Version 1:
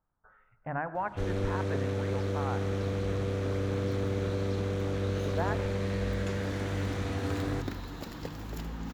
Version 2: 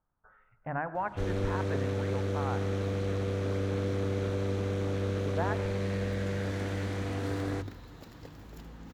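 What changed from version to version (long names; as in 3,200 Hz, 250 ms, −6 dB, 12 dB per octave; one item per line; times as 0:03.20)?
second sound −9.5 dB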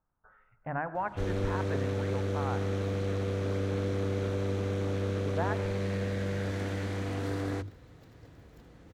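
second sound −11.5 dB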